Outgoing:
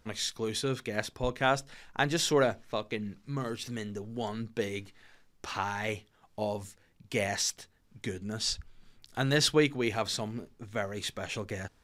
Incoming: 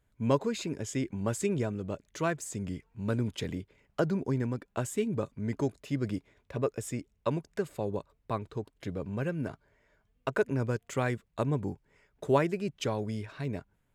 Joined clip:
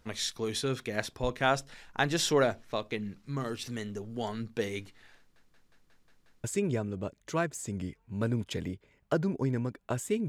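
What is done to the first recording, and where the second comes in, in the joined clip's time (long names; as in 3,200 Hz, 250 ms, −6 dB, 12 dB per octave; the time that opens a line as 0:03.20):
outgoing
0:05.18: stutter in place 0.18 s, 7 plays
0:06.44: continue with incoming from 0:01.31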